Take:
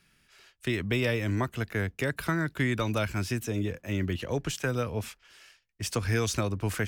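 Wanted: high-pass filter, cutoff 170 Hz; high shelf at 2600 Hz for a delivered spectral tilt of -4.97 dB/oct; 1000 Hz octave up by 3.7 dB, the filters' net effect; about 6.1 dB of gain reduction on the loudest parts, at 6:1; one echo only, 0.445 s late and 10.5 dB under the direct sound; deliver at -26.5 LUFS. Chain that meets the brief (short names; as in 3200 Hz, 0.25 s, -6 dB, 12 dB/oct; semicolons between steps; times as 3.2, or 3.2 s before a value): HPF 170 Hz; bell 1000 Hz +6 dB; high shelf 2600 Hz -5.5 dB; compressor 6:1, threshold -30 dBFS; echo 0.445 s -10.5 dB; gain +9 dB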